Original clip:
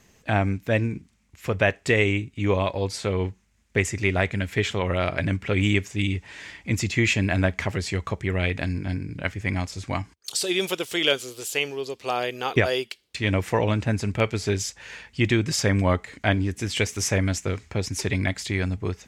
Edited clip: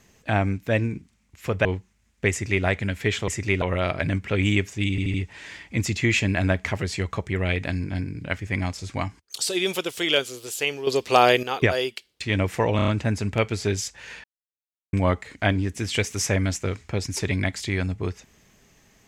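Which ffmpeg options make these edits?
-filter_complex "[0:a]asplit=15[a][b][c][d][e][f][g][h][i][j][k][l][m][n][o];[a]atrim=end=1.652[p];[b]atrim=start=3.168:end=4.802[q];[c]atrim=start=3.828:end=4.172[r];[d]atrim=start=4.798:end=6.162[s];[e]atrim=start=6.078:end=6.162[t];[f]atrim=start=6.078:end=6.162[u];[g]atrim=start=6.078:end=11.812[v];[h]atrim=start=11.808:end=12.372,asetpts=PTS-STARTPTS,volume=10dB[w];[i]atrim=start=12.368:end=13.732[x];[j]atrim=start=13.698:end=13.732[y];[k]atrim=start=13.698:end=13.732[z];[l]atrim=start=13.698:end=13.732[aa];[m]atrim=start=13.698:end=15.06,asetpts=PTS-STARTPTS,afade=t=out:st=1.358:d=0.004:c=hsin[ab];[n]atrim=start=15.06:end=15.75,asetpts=PTS-STARTPTS,volume=0[ac];[o]atrim=start=15.75,asetpts=PTS-STARTPTS,afade=t=in:d=0.004:c=hsin[ad];[p][q]acrossfade=d=0.004:c1=hsin:c2=hsin[ae];[ae][r]acrossfade=d=0.004:c1=hsin:c2=hsin[af];[af][s]acrossfade=d=0.004:c1=hsin:c2=hsin[ag];[ag][t]acrossfade=d=0.004:c1=hsin:c2=hsin[ah];[ah][u]acrossfade=d=0.004:c1=hsin:c2=hsin[ai];[ai][v]acrossfade=d=0.004:c1=hsin:c2=hsin[aj];[aj][w]acrossfade=d=0.004:c1=hsin:c2=hsin[ak];[ak][x]acrossfade=d=0.004:c1=hsin:c2=hsin[al];[al][y]acrossfade=d=0.004:c1=hsin:c2=hsin[am];[am][z]acrossfade=d=0.004:c1=hsin:c2=hsin[an];[an][aa]acrossfade=d=0.004:c1=hsin:c2=hsin[ao];[ab][ac][ad]concat=n=3:v=0:a=1[ap];[ao][ap]acrossfade=d=0.004:c1=hsin:c2=hsin"

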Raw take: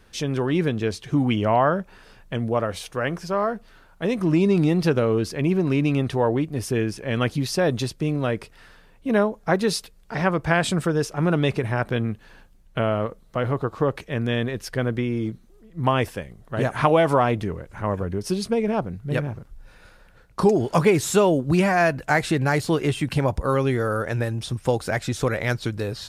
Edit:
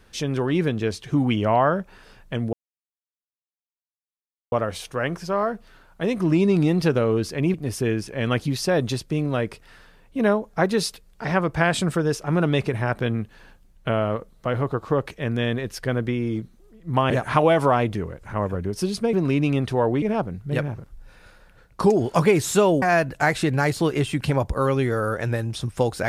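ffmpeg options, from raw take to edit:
-filter_complex "[0:a]asplit=7[a][b][c][d][e][f][g];[a]atrim=end=2.53,asetpts=PTS-STARTPTS,afade=t=out:st=2.526:d=0.004:c=hsin,apad=pad_dur=1.99[h];[b]atrim=start=2.53:end=5.552,asetpts=PTS-STARTPTS,afade=t=in:d=0.004:c=hsin[i];[c]atrim=start=6.438:end=16.002[j];[d]atrim=start=16.578:end=18.612[k];[e]atrim=start=5.548:end=6.442[l];[f]atrim=start=18.608:end=21.412[m];[g]atrim=start=21.698[n];[h][i]concat=n=2:v=0:a=1[o];[o][j]acrossfade=d=0.004:c1=hsin:c2=hsin[p];[p][k]acrossfade=d=0.004:c1=hsin:c2=hsin[q];[q][l]acrossfade=d=0.004:c1=hsin:c2=hsin[r];[r][m]acrossfade=d=0.004:c1=hsin:c2=hsin[s];[s][n]acrossfade=d=0.004:c1=hsin:c2=hsin"

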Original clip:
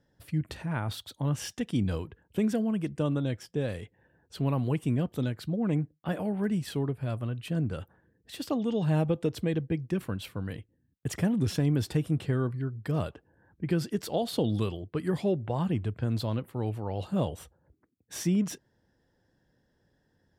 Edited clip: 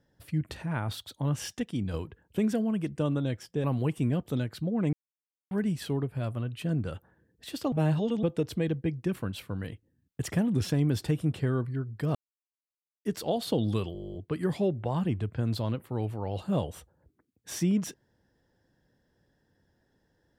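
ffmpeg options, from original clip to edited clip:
-filter_complex "[0:a]asplit=21[a][b][c][d][e][f][g][h][i][j][k][l][m][n][o][p][q][r][s][t][u];[a]atrim=end=1.632[v];[b]atrim=start=1.628:end=1.942,asetpts=PTS-STARTPTS,volume=-4dB[w];[c]atrim=start=1.938:end=3.642[x];[d]atrim=start=4.498:end=5.79,asetpts=PTS-STARTPTS,afade=t=out:st=1.288:d=0.004:c=hsin[y];[e]atrim=start=5.79:end=6.37,asetpts=PTS-STARTPTS,volume=0[z];[f]atrim=start=6.37:end=8.582,asetpts=PTS-STARTPTS,afade=t=in:d=0.004:c=hsin[aa];[g]atrim=start=8.578:end=9.092,asetpts=PTS-STARTPTS,areverse[ab];[h]atrim=start=9.088:end=13.01,asetpts=PTS-STARTPTS,afade=t=out:st=3.918:d=0.004:c=hsin[ac];[i]atrim=start=13.01:end=13.91,asetpts=PTS-STARTPTS,volume=0[ad];[j]atrim=start=13.91:end=14.812,asetpts=PTS-STARTPTS,afade=t=in:d=0.004:c=hsin[ae];[k]atrim=start=14.788:end=14.812[af];[l]atrim=start=14.788:end=14.812[ag];[m]atrim=start=14.788:end=14.812[ah];[n]atrim=start=14.788:end=14.812[ai];[o]atrim=start=14.788:end=14.812[aj];[p]atrim=start=14.788:end=14.812[ak];[q]atrim=start=14.788:end=14.812[al];[r]atrim=start=14.788:end=14.812[am];[s]atrim=start=14.788:end=14.812[an];[t]atrim=start=14.788:end=14.812[ao];[u]atrim=start=14.788[ap];[v][w]acrossfade=d=0.004:c1=hsin:c2=hsin[aq];[aq][x]acrossfade=d=0.004:c1=hsin:c2=hsin[ar];[y][z][aa]concat=n=3:v=0:a=1[as];[ar][as]acrossfade=d=0.004:c1=hsin:c2=hsin[at];[at][ab]acrossfade=d=0.004:c1=hsin:c2=hsin[au];[ac][ad][ae]concat=n=3:v=0:a=1[av];[au][av]acrossfade=d=0.004:c1=hsin:c2=hsin[aw];[aw][af]acrossfade=d=0.004:c1=hsin:c2=hsin[ax];[ax][ag]acrossfade=d=0.004:c1=hsin:c2=hsin[ay];[ay][ah]acrossfade=d=0.004:c1=hsin:c2=hsin[az];[az][ai]acrossfade=d=0.004:c1=hsin:c2=hsin[ba];[ba][aj]acrossfade=d=0.004:c1=hsin:c2=hsin[bb];[bb][ak]acrossfade=d=0.004:c1=hsin:c2=hsin[bc];[bc][al]acrossfade=d=0.004:c1=hsin:c2=hsin[bd];[bd][am]acrossfade=d=0.004:c1=hsin:c2=hsin[be];[be][an]acrossfade=d=0.004:c1=hsin:c2=hsin[bf];[bf][ao]acrossfade=d=0.004:c1=hsin:c2=hsin[bg];[bg][ap]acrossfade=d=0.004:c1=hsin:c2=hsin"

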